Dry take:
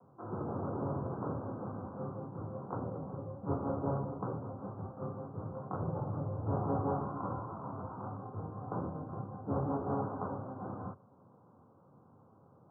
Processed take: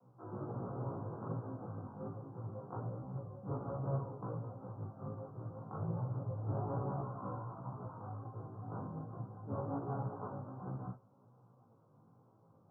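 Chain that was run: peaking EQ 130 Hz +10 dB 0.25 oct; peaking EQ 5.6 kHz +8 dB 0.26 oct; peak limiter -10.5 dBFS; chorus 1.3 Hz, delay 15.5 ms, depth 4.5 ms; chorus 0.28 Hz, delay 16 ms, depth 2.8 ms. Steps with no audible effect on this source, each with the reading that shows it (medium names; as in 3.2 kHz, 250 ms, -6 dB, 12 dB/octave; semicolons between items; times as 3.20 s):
peaking EQ 5.6 kHz: input has nothing above 1.4 kHz; peak limiter -10.5 dBFS: peak at its input -19.0 dBFS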